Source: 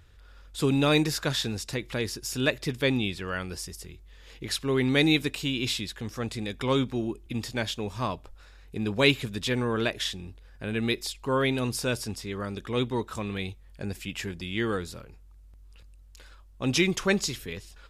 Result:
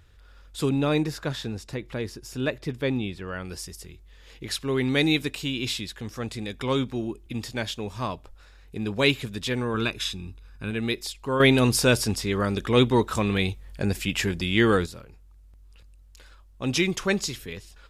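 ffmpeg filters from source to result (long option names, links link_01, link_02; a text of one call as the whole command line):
ffmpeg -i in.wav -filter_complex "[0:a]asettb=1/sr,asplit=3[link_01][link_02][link_03];[link_01]atrim=end=0.694[link_04];[link_02]atrim=start=0.69:end=3.45,asetpts=PTS-STARTPTS,afade=type=in:duration=0.004:curve=qsin,afade=type=out:start_time=2.756:duration=0.004:curve=qsin,highshelf=frequency=2100:gain=-9.5[link_05];[link_03]atrim=start=3.446[link_06];[link_04][link_05]acrossfade=duration=0.004:curve1=hsin:curve2=qsin[link_07];[link_07][link_06]acrossfade=duration=0.004:curve1=qsin:curve2=hsin,asettb=1/sr,asplit=3[link_08][link_09][link_10];[link_08]atrim=end=9.744[link_11];[link_09]atrim=start=9.74:end=10.71,asetpts=PTS-STARTPTS,afade=type=in:duration=0.004:curve=qsin,afade=type=out:start_time=0.966:duration=0.004:curve=qsin,aecho=1:1:0.8:0.58,atrim=end_sample=42777[link_12];[link_10]atrim=start=10.706[link_13];[link_11][link_12]acrossfade=duration=0.004:curve1=hsin:curve2=qsin[link_14];[link_14][link_13]acrossfade=duration=0.004:curve1=qsin:curve2=hsin,asplit=3[link_15][link_16][link_17];[link_15]atrim=end=11.402[link_18];[link_16]atrim=start=11.398:end=14.862,asetpts=PTS-STARTPTS,volume=8.5dB[link_19];[link_17]atrim=start=14.858[link_20];[link_18][link_19]acrossfade=duration=0.004:curve1=hsin:curve2=hsin[link_21];[link_21][link_20]acrossfade=duration=0.004:curve1=hsin:curve2=hsin" out.wav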